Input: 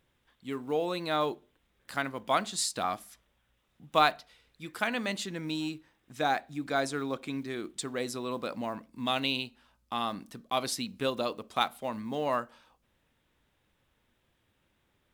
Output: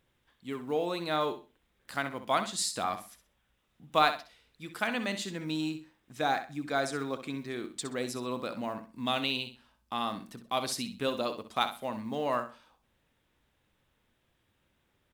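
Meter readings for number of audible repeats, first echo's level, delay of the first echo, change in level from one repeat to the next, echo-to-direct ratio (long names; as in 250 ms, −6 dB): 3, −10.5 dB, 64 ms, −12.0 dB, −10.0 dB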